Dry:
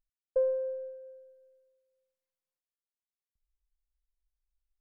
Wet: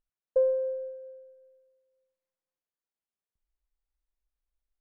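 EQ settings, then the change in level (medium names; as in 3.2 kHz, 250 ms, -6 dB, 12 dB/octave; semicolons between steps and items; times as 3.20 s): low-pass 1 kHz 6 dB/octave; bass shelf 150 Hz -7 dB; +5.0 dB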